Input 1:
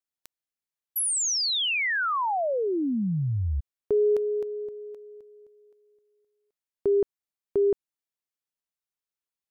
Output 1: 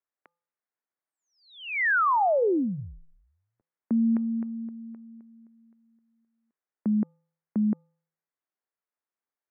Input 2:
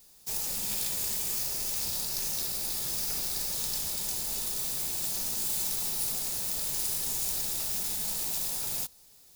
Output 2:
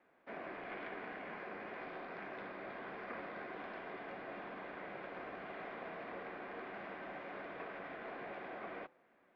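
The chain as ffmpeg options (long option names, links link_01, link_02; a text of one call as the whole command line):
ffmpeg -i in.wav -af "bandreject=frequency=350.6:width_type=h:width=4,bandreject=frequency=701.2:width_type=h:width=4,bandreject=frequency=1051.8:width_type=h:width=4,bandreject=frequency=1402.4:width_type=h:width=4,highpass=frequency=460:width_type=q:width=0.5412,highpass=frequency=460:width_type=q:width=1.307,lowpass=frequency=2200:width_type=q:width=0.5176,lowpass=frequency=2200:width_type=q:width=0.7071,lowpass=frequency=2200:width_type=q:width=1.932,afreqshift=-190,volume=4dB" out.wav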